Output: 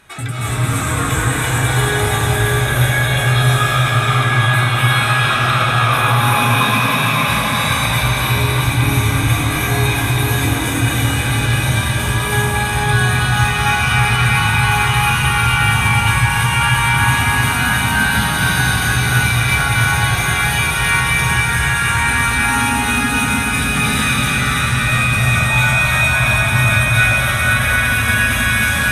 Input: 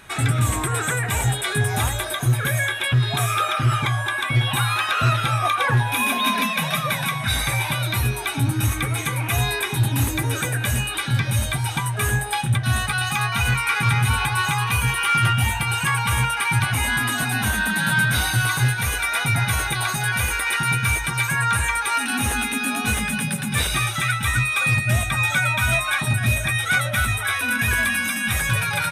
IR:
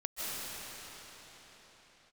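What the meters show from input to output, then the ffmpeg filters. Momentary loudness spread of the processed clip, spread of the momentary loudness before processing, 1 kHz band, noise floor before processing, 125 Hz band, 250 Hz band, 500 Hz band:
3 LU, 4 LU, +7.0 dB, -27 dBFS, +6.0 dB, +7.0 dB, +8.0 dB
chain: -filter_complex "[1:a]atrim=start_sample=2205,asetrate=29547,aresample=44100[a];[0:a][a]afir=irnorm=-1:irlink=0,volume=-2dB"

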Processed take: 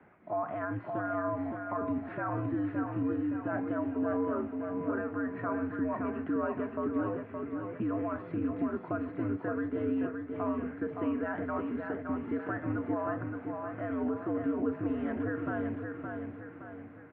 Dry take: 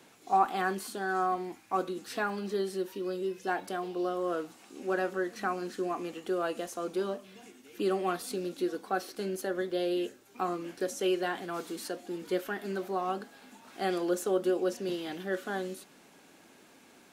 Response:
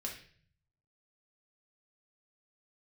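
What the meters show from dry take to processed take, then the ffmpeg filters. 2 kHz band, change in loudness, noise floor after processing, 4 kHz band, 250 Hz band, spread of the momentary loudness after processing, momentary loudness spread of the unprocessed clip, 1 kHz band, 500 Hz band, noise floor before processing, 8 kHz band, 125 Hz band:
-3.0 dB, -1.0 dB, -46 dBFS, under -20 dB, +4.0 dB, 6 LU, 8 LU, -5.5 dB, -3.5 dB, -58 dBFS, under -35 dB, +6.5 dB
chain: -af "lowshelf=f=83:g=-9,dynaudnorm=f=260:g=5:m=3dB,alimiter=level_in=1dB:limit=-24dB:level=0:latency=1:release=53,volume=-1dB,aecho=1:1:568|1136|1704|2272|2840|3408:0.562|0.259|0.119|0.0547|0.0252|0.0116,highpass=f=150:t=q:w=0.5412,highpass=f=150:t=q:w=1.307,lowpass=f=2.1k:t=q:w=0.5176,lowpass=f=2.1k:t=q:w=0.7071,lowpass=f=2.1k:t=q:w=1.932,afreqshift=-88"

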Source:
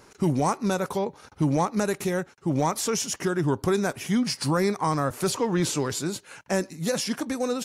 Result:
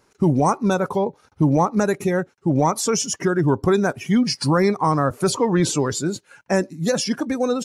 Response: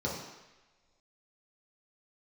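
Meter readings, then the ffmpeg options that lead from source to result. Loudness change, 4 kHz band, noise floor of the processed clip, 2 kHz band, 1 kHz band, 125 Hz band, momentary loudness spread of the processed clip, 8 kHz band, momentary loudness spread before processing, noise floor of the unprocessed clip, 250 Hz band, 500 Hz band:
+5.5 dB, +3.5 dB, -61 dBFS, +4.5 dB, +6.0 dB, +6.0 dB, 5 LU, +4.0 dB, 5 LU, -54 dBFS, +6.0 dB, +6.0 dB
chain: -af "afftdn=nr=14:nf=-35,volume=6dB"

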